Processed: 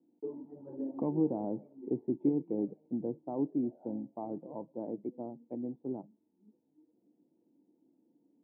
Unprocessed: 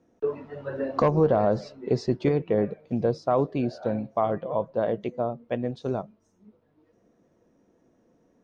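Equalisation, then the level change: cascade formant filter u; high-pass 130 Hz 24 dB/octave; 0.0 dB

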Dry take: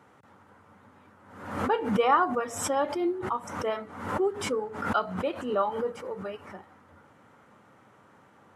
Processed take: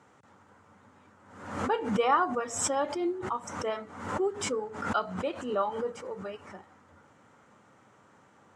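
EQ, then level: resonant low-pass 7.4 kHz, resonance Q 2.3; -2.5 dB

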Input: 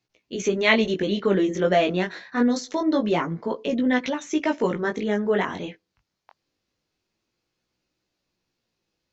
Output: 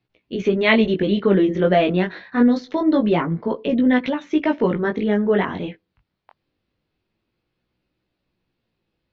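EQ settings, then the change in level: low-pass 3.9 kHz 24 dB/octave; bass shelf 300 Hz +7 dB; +1.5 dB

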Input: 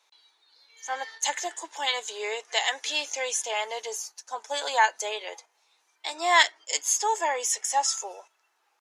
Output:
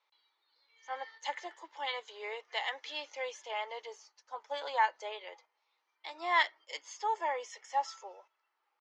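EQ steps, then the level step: dynamic bell 620 Hz, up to +3 dB, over -34 dBFS, Q 0.71; cabinet simulation 400–3800 Hz, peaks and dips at 430 Hz -5 dB, 700 Hz -9 dB, 1 kHz -3 dB, 1.6 kHz -8 dB, 2.6 kHz -8 dB, 3.7 kHz -8 dB; -4.0 dB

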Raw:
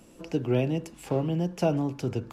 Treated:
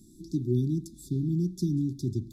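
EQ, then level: brick-wall FIR band-stop 390–3400 Hz; bass shelf 250 Hz +5 dB; treble shelf 7.7 kHz +4.5 dB; -2.5 dB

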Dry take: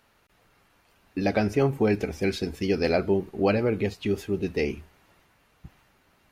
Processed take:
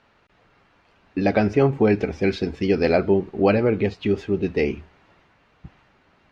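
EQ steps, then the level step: distance through air 140 m; bass shelf 66 Hz -5.5 dB; treble shelf 9 kHz -4 dB; +5.5 dB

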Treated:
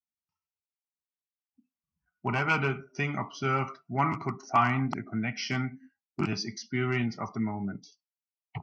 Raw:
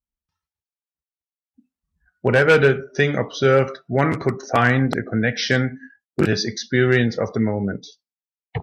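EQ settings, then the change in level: dynamic bell 1 kHz, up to +6 dB, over -31 dBFS, Q 1.3; band-pass 130–5700 Hz; static phaser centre 2.5 kHz, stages 8; -6.5 dB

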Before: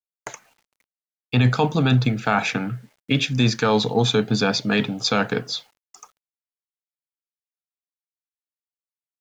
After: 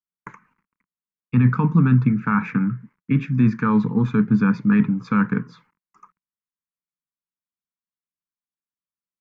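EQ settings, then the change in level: FFT filter 120 Hz 0 dB, 180 Hz +10 dB, 490 Hz -11 dB, 710 Hz -26 dB, 1 kHz +3 dB, 2.3 kHz -7 dB, 3.4 kHz -27 dB; 0.0 dB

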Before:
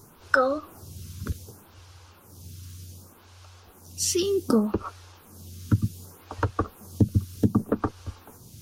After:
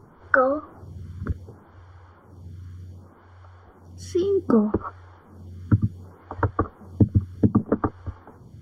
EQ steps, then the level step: Savitzky-Golay filter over 41 samples; +3.0 dB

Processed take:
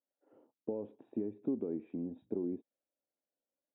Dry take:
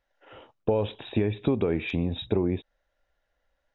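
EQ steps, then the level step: ladder band-pass 310 Hz, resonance 45%; -1.5 dB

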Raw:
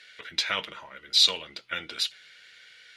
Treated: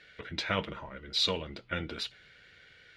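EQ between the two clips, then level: tilt EQ -4.5 dB/octave; 0.0 dB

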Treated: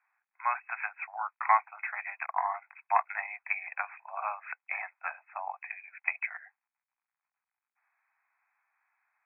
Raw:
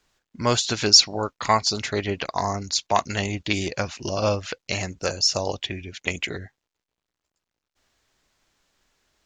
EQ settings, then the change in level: steep high-pass 740 Hz 72 dB/octave; brick-wall FIR low-pass 2.6 kHz; -2.5 dB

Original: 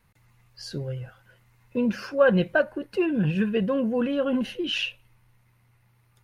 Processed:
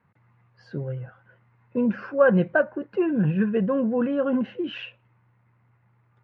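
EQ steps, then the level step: Chebyshev band-pass 130–1500 Hz, order 2; +2.0 dB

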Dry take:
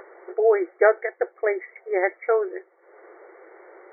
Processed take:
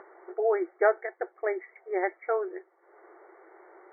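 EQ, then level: band-pass filter 540 Hz, Q 0.78; peaking EQ 510 Hz -13 dB 0.65 oct; +1.5 dB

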